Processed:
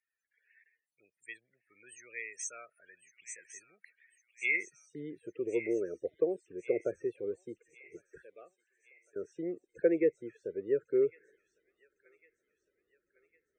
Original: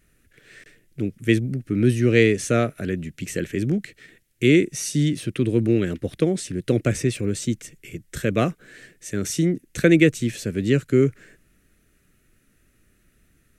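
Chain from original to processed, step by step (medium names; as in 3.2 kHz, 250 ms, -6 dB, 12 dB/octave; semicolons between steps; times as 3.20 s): 8.22–9.16 s: pre-emphasis filter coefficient 0.97; loudest bins only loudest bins 32; band-pass sweep 6.2 kHz -> 410 Hz, 4.22–4.95 s; graphic EQ 125/250/500/1000/2000/4000/8000 Hz -6/-12/+6/+9/+7/-5/+9 dB; on a send: feedback echo behind a high-pass 1105 ms, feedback 50%, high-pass 2.3 kHz, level -11 dB; on the sum: trim -7.5 dB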